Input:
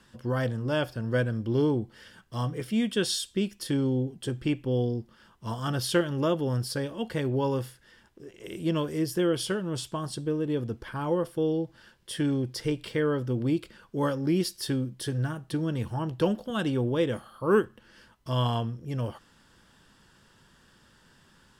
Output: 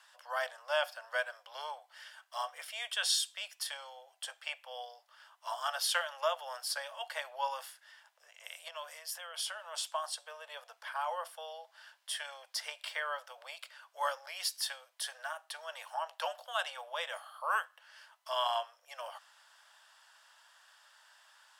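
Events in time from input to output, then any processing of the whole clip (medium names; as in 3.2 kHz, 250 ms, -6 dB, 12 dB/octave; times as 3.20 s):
8.68–9.62 s: compression 3:1, threshold -32 dBFS
whole clip: steep high-pass 610 Hz 72 dB/octave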